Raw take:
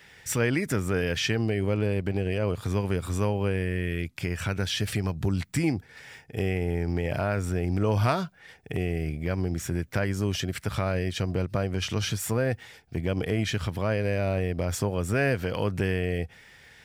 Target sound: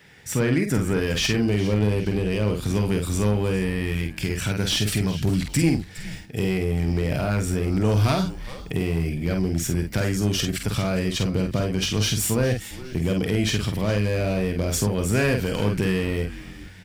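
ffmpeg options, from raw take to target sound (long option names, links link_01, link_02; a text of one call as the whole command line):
ffmpeg -i in.wav -filter_complex "[0:a]acrossover=split=2600[link_01][link_02];[link_02]dynaudnorm=framelen=410:gausssize=5:maxgain=9dB[link_03];[link_01][link_03]amix=inputs=2:normalize=0,asplit=2[link_04][link_05];[link_05]adelay=48,volume=-5.5dB[link_06];[link_04][link_06]amix=inputs=2:normalize=0,aeval=exprs='clip(val(0),-1,0.106)':channel_layout=same,equalizer=frequency=200:width_type=o:width=2.4:gain=7,asplit=4[link_07][link_08][link_09][link_10];[link_08]adelay=411,afreqshift=-140,volume=-15.5dB[link_11];[link_09]adelay=822,afreqshift=-280,volume=-23.7dB[link_12];[link_10]adelay=1233,afreqshift=-420,volume=-31.9dB[link_13];[link_07][link_11][link_12][link_13]amix=inputs=4:normalize=0,volume=-1dB" out.wav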